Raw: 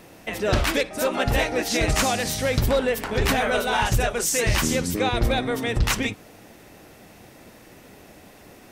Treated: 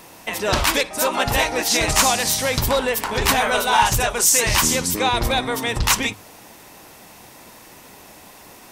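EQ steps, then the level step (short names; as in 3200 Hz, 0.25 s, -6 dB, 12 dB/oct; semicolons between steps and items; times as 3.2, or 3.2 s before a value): bell 970 Hz +10 dB 0.59 oct; high shelf 2600 Hz +11 dB; notches 50/100 Hz; -1.0 dB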